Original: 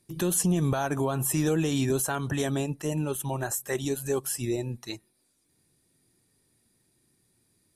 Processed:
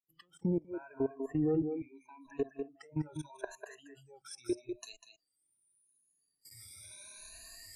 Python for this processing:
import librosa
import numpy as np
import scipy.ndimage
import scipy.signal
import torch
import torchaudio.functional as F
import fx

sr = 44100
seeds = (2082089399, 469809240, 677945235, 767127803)

y = fx.spec_ripple(x, sr, per_octave=1.5, drift_hz=0.8, depth_db=19)
y = fx.recorder_agc(y, sr, target_db=-20.0, rise_db_per_s=15.0, max_gain_db=30)
y = fx.vowel_filter(y, sr, vowel='u', at=(1.65, 2.24), fade=0.02)
y = fx.env_lowpass_down(y, sr, base_hz=650.0, full_db=-17.5)
y = fx.doubler(y, sr, ms=13.0, db=-8, at=(2.92, 3.7))
y = fx.level_steps(y, sr, step_db=22)
y = fx.peak_eq(y, sr, hz=89.0, db=-2.5, octaves=2.6)
y = y + 10.0 ** (-6.5 / 20.0) * np.pad(y, (int(197 * sr / 1000.0), 0))[:len(y)]
y = fx.noise_reduce_blind(y, sr, reduce_db=23)
y = fx.high_shelf(y, sr, hz=6600.0, db=11.0, at=(4.31, 4.93))
y = F.gain(torch.from_numpy(y), -6.0).numpy()